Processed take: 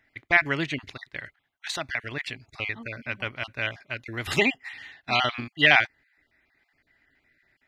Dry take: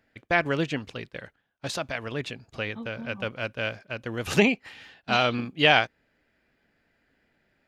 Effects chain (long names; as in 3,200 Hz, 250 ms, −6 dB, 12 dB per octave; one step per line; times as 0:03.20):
time-frequency cells dropped at random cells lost 22%
thirty-one-band graphic EQ 200 Hz −11 dB, 500 Hz −11 dB, 2,000 Hz +11 dB, 4,000 Hz +4 dB